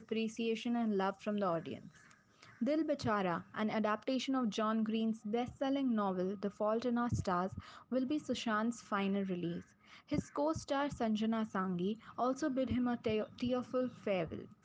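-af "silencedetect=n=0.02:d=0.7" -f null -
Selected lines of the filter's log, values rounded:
silence_start: 1.74
silence_end: 2.62 | silence_duration: 0.88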